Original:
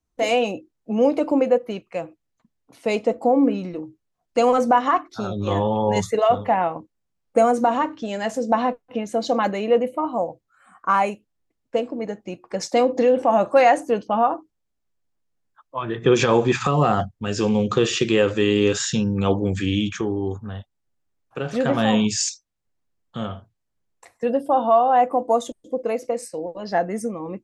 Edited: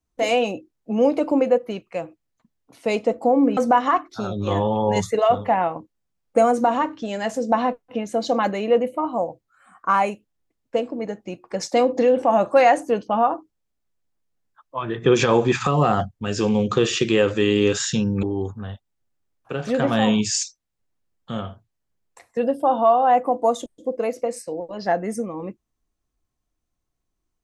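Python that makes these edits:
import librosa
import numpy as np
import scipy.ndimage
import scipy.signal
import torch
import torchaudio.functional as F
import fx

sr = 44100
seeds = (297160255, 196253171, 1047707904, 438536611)

y = fx.edit(x, sr, fx.cut(start_s=3.57, length_s=1.0),
    fx.cut(start_s=19.23, length_s=0.86), tone=tone)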